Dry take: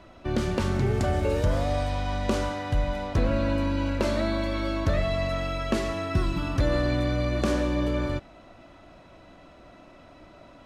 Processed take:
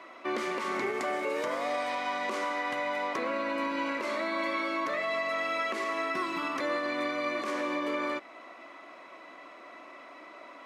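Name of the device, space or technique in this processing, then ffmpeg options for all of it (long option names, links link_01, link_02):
laptop speaker: -af "highpass=frequency=290:width=0.5412,highpass=frequency=290:width=1.3066,equalizer=frequency=1100:width_type=o:width=0.33:gain=11.5,equalizer=frequency=2100:width_type=o:width=0.4:gain=12,alimiter=limit=-22.5dB:level=0:latency=1:release=206"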